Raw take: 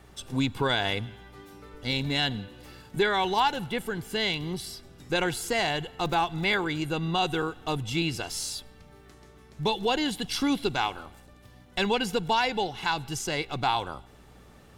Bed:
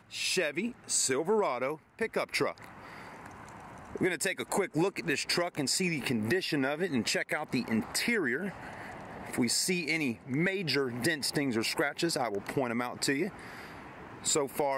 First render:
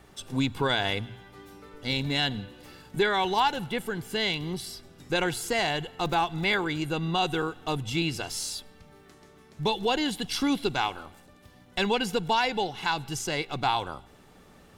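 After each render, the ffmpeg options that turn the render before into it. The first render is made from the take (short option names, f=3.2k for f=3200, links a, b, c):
-af "bandreject=f=60:t=h:w=4,bandreject=f=120:t=h:w=4"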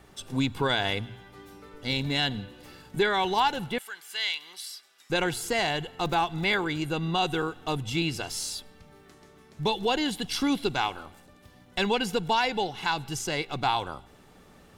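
-filter_complex "[0:a]asettb=1/sr,asplit=3[a][b][c];[a]atrim=end=3.784[d];[b]atrim=start=3.78:end=5.1,asetpts=PTS-STARTPTS,afade=t=in:d=0.004:c=qsin,afade=t=out:st=1.316:d=0.004:c=qsin,highpass=1.4k[e];[c]atrim=start=5.096[f];[d][e]acrossfade=d=0.004:c1=hsin:c2=qsin[g];[g][f]acrossfade=d=0.004:c1=qsin:c2=hsin"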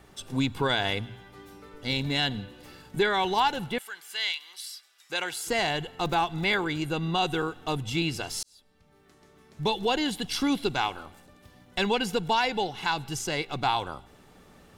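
-filter_complex "[0:a]asettb=1/sr,asplit=3[a][b][c];[a]atrim=end=4.324[d];[b]atrim=start=4.32:end=5.47,asetpts=PTS-STARTPTS,afade=t=in:d=0.004:c=qsin,afade=t=out:st=1.146:d=0.004:c=qsin,highpass=f=1.2k:p=1[e];[c]atrim=start=5.466[f];[d][e]acrossfade=d=0.004:c1=hsin:c2=qsin[g];[g][f]acrossfade=d=0.004:c1=qsin:c2=hsin,asplit=2[h][i];[h]atrim=end=8.43,asetpts=PTS-STARTPTS,afade=t=out:st=8.426:d=0.004:c=hsin[j];[i]atrim=start=8.43,asetpts=PTS-STARTPTS,afade=t=in:d=1.26[k];[j][k]concat=n=2:v=0:a=1"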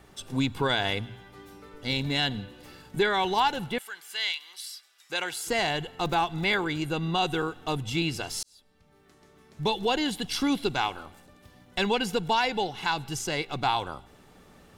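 -af anull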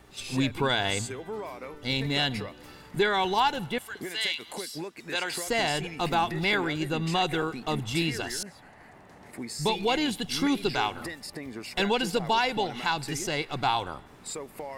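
-filter_complex "[1:a]volume=-8.5dB[a];[0:a][a]amix=inputs=2:normalize=0"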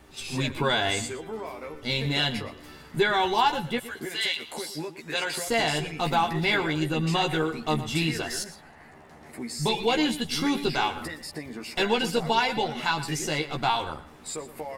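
-filter_complex "[0:a]asplit=2[a][b];[b]adelay=13,volume=-4dB[c];[a][c]amix=inputs=2:normalize=0,asplit=2[d][e];[e]adelay=116.6,volume=-14dB,highshelf=f=4k:g=-2.62[f];[d][f]amix=inputs=2:normalize=0"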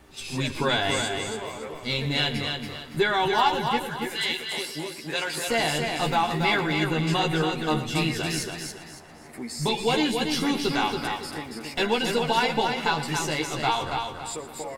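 -af "aecho=1:1:280|560|840|1120:0.562|0.186|0.0612|0.0202"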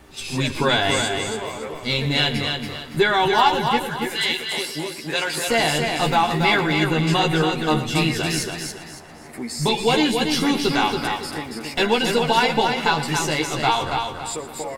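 -af "volume=5dB"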